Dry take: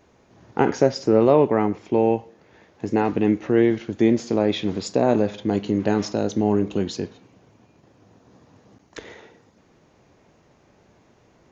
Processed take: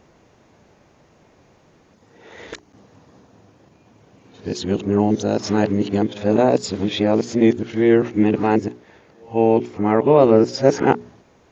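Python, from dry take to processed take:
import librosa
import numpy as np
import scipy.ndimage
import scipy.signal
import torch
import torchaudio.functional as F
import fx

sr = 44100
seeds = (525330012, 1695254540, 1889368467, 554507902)

y = x[::-1].copy()
y = fx.hum_notches(y, sr, base_hz=60, count=7)
y = y * 10.0 ** (3.5 / 20.0)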